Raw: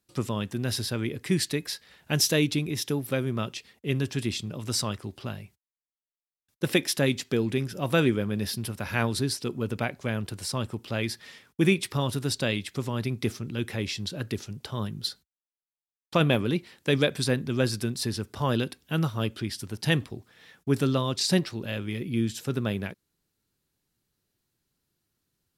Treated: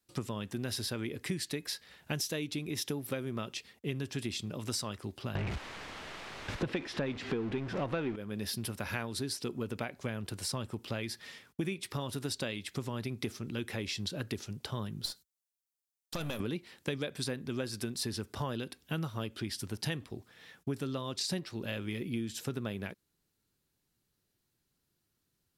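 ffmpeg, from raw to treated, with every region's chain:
-filter_complex "[0:a]asettb=1/sr,asplit=3[a][b][c];[a]atrim=end=5.354[d];[b]atrim=start=5.35:end=8.16,asetpts=PTS-STARTPTS,afade=t=in:d=0.004:c=qsin,afade=t=out:st=2.806:d=0.004:c=qsin,aeval=exprs='val(0)+0.5*0.0316*sgn(val(0))':c=same,lowpass=2.6k,acontrast=76[e];[c]atrim=start=8.156[f];[d][e]acrossfade=d=0.004:c1=hsin:c2=qsin[g];[g][f]acrossfade=d=0.004:c1=qsin:c2=hsin,asettb=1/sr,asplit=3[h][i][j];[h]atrim=end=15.054[k];[i]atrim=start=15.05:end=16.4,asetpts=PTS-STARTPTS,afade=t=in:d=0.004:c=qsin,afade=t=out:st=1.346:d=0.004:c=qsin,bass=f=250:g=-2,treble=f=4k:g=11,acompressor=threshold=-24dB:ratio=4:attack=3.2:release=140:knee=1:detection=peak,aeval=exprs='(tanh(15.8*val(0)+0.65)-tanh(0.65))/15.8':c=same[l];[j]atrim=start=16.396[m];[k][l]acrossfade=d=0.004:c1=hsin:c2=qsin[n];[n][m]acrossfade=d=0.004:c1=qsin:c2=hsin,adynamicequalizer=threshold=0.00891:dfrequency=130:dqfactor=1.4:tfrequency=130:tqfactor=1.4:attack=5:release=100:ratio=0.375:range=3:mode=cutabove:tftype=bell,acompressor=threshold=-30dB:ratio=10,volume=-1.5dB"

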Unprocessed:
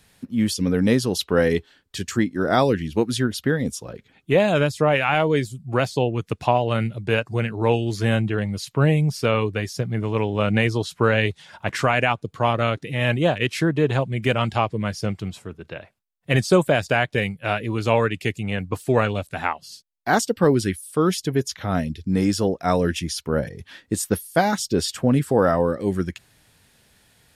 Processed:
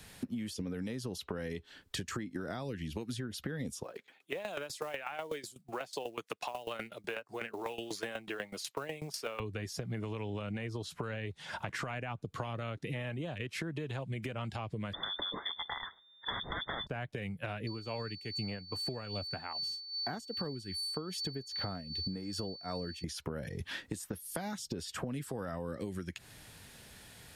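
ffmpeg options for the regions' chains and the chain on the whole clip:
-filter_complex "[0:a]asettb=1/sr,asplit=3[a][b][c];[a]atrim=end=3.834[d];[b]atrim=start=3.83:end=9.4,asetpts=PTS-STARTPTS,afade=t=in:d=0.004:c=qsin,afade=t=out:st=5.566:d=0.004:c=qsin,highpass=490,acrusher=bits=6:mode=log:mix=0:aa=0.000001,aeval=exprs='val(0)*pow(10,-18*if(lt(mod(8.1*n/s,1),2*abs(8.1)/1000),1-mod(8.1*n/s,1)/(2*abs(8.1)/1000),(mod(8.1*n/s,1)-2*abs(8.1)/1000)/(1-2*abs(8.1)/1000))/20)':c=same[e];[c]atrim=start=9.396[f];[d][e]acrossfade=d=0.004:c1=hsin:c2=qsin[g];[g][f]acrossfade=d=0.004:c1=qsin:c2=hsin,asettb=1/sr,asplit=3[h][i][j];[h]atrim=end=14.934[k];[i]atrim=start=14.93:end=16.87,asetpts=PTS-STARTPTS,afade=t=in:d=0.004:c=qsin,afade=t=out:st=1.936:d=0.004:c=qsin,aeval=exprs='0.562*sin(PI/2*6.31*val(0)/0.562)':c=same,asuperstop=centerf=720:order=20:qfactor=0.59,lowpass=f=3.1k:t=q:w=0.5098,lowpass=f=3.1k:t=q:w=0.6013,lowpass=f=3.1k:t=q:w=0.9,lowpass=f=3.1k:t=q:w=2.563,afreqshift=-3600[l];[j]atrim=start=16.866[m];[k][l]acrossfade=d=0.004:c1=hsin:c2=qsin[n];[n][m]acrossfade=d=0.004:c1=qsin:c2=hsin,asettb=1/sr,asplit=3[o][p][q];[o]atrim=end=17.674[r];[p]atrim=start=17.67:end=23.04,asetpts=PTS-STARTPTS,afade=t=in:d=0.004:c=qsin,afade=t=out:st=5.366:d=0.004:c=qsin,aeval=exprs='val(0)+0.0562*sin(2*PI*4500*n/s)':c=same,aeval=exprs='val(0)*pow(10,-20*(0.5-0.5*cos(2*PI*2.5*n/s))/20)':c=same[s];[q]atrim=start=23.036[t];[r][s]acrossfade=d=0.004:c1=hsin:c2=qsin[u];[u][t]acrossfade=d=0.004:c1=qsin:c2=hsin,acrossover=split=220|2000[v][w][x];[v]acompressor=threshold=-32dB:ratio=4[y];[w]acompressor=threshold=-31dB:ratio=4[z];[x]acompressor=threshold=-40dB:ratio=4[aa];[y][z][aa]amix=inputs=3:normalize=0,alimiter=limit=-22dB:level=0:latency=1:release=147,acompressor=threshold=-39dB:ratio=10,volume=4dB"

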